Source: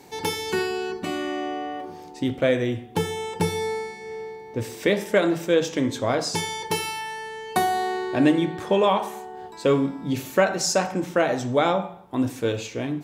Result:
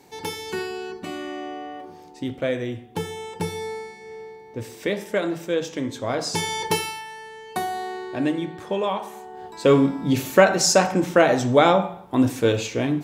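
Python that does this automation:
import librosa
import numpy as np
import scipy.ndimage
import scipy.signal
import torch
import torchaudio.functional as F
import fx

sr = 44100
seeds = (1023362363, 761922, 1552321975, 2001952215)

y = fx.gain(x, sr, db=fx.line((6.0, -4.0), (6.65, 5.0), (7.05, -5.0), (9.03, -5.0), (9.79, 5.0)))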